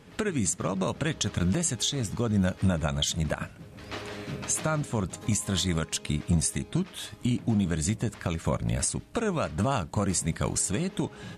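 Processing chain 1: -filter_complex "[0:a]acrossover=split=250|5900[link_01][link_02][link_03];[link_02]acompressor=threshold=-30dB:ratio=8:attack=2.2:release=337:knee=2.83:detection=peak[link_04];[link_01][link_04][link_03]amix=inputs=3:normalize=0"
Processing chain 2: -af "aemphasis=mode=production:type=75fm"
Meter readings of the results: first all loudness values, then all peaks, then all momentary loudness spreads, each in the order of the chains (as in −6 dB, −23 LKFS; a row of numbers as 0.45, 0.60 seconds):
−30.0, −22.0 LKFS; −15.0, −2.5 dBFS; 7, 13 LU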